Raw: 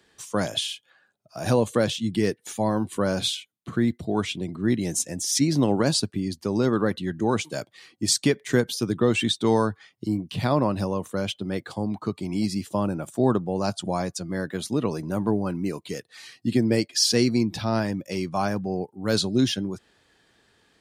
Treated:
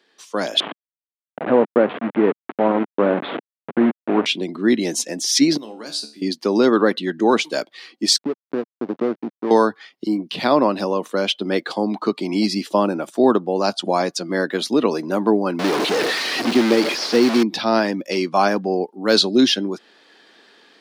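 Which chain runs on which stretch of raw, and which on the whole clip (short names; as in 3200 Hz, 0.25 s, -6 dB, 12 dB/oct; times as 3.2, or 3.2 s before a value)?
0.6–4.26 level-crossing sampler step -23.5 dBFS + Gaussian blur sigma 4.3 samples
5.57–6.22 pre-emphasis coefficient 0.8 + resonator 73 Hz, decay 0.37 s, mix 80%
8.18–9.51 LPF 1200 Hz 24 dB/oct + compressor 2:1, threshold -29 dBFS + backlash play -29 dBFS
15.59–17.43 delta modulation 64 kbps, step -20.5 dBFS + de-esser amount 65%
whole clip: AGC; HPF 240 Hz 24 dB/oct; resonant high shelf 6100 Hz -7.5 dB, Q 1.5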